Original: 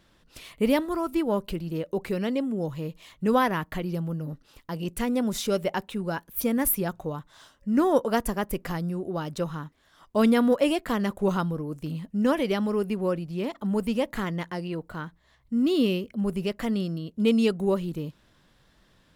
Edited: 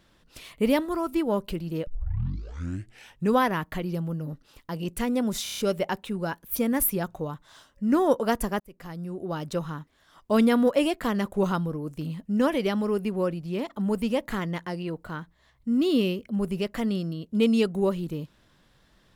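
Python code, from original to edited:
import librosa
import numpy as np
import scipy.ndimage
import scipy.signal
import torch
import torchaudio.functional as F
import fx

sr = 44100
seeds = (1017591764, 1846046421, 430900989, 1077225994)

y = fx.edit(x, sr, fx.tape_start(start_s=1.87, length_s=1.46),
    fx.stutter(start_s=5.43, slice_s=0.03, count=6),
    fx.fade_in_span(start_s=8.45, length_s=0.79), tone=tone)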